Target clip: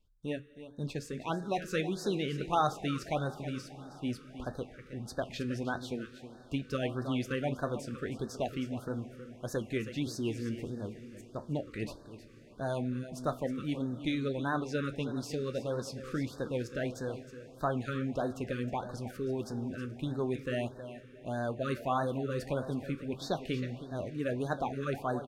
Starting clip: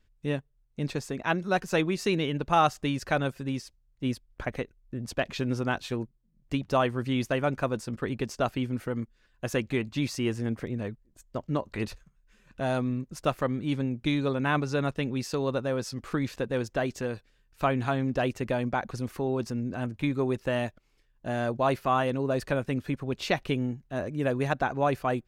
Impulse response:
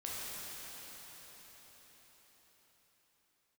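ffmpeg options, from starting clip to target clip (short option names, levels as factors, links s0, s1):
-filter_complex "[0:a]flanger=delay=9.7:depth=5.9:regen=-65:speed=0.21:shape=triangular,aecho=1:1:317:0.237,asplit=2[s0][s1];[1:a]atrim=start_sample=2205,asetrate=28224,aresample=44100[s2];[s1][s2]afir=irnorm=-1:irlink=0,volume=0.1[s3];[s0][s3]amix=inputs=2:normalize=0,afftfilt=real='re*(1-between(b*sr/1024,760*pow(2600/760,0.5+0.5*sin(2*PI*1.6*pts/sr))/1.41,760*pow(2600/760,0.5+0.5*sin(2*PI*1.6*pts/sr))*1.41))':imag='im*(1-between(b*sr/1024,760*pow(2600/760,0.5+0.5*sin(2*PI*1.6*pts/sr))/1.41,760*pow(2600/760,0.5+0.5*sin(2*PI*1.6*pts/sr))*1.41))':win_size=1024:overlap=0.75,volume=0.794"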